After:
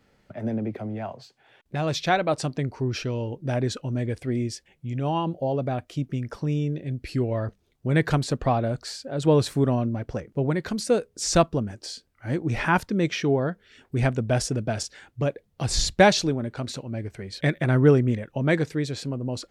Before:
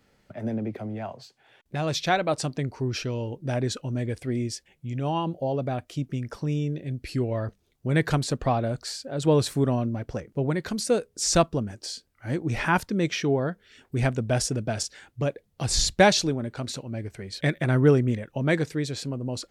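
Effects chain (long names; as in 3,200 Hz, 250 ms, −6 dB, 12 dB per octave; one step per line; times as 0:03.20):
high-shelf EQ 4,800 Hz −5.5 dB
level +1.5 dB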